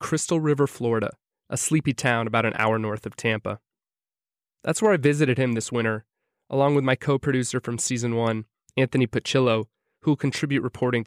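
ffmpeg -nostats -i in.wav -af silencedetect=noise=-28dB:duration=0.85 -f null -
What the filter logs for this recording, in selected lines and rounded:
silence_start: 3.54
silence_end: 4.65 | silence_duration: 1.11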